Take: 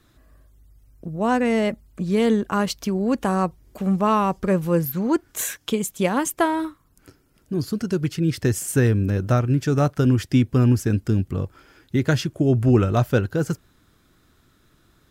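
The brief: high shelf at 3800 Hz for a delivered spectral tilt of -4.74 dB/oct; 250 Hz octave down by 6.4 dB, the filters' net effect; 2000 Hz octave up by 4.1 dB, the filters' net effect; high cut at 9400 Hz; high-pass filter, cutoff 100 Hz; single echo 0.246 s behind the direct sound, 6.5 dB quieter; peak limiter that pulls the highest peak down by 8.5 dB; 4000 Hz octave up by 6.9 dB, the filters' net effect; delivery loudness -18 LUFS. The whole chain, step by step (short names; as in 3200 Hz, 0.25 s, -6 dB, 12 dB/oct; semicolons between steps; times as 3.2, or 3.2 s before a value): HPF 100 Hz; LPF 9400 Hz; bell 250 Hz -8.5 dB; bell 2000 Hz +3.5 dB; high shelf 3800 Hz +3 dB; bell 4000 Hz +6 dB; limiter -13.5 dBFS; echo 0.246 s -6.5 dB; gain +7 dB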